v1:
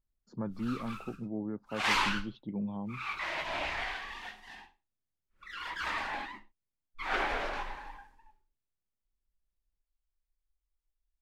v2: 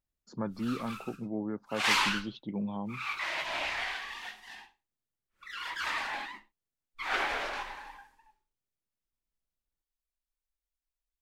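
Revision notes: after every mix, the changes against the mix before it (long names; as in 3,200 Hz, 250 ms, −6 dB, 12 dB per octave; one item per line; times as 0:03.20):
speech +5.5 dB
master: add spectral tilt +2 dB per octave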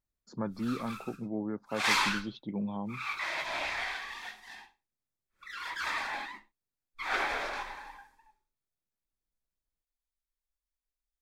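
master: add notch filter 2,900 Hz, Q 7.8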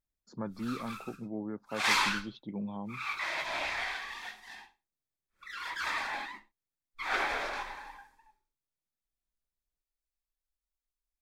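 speech −3.0 dB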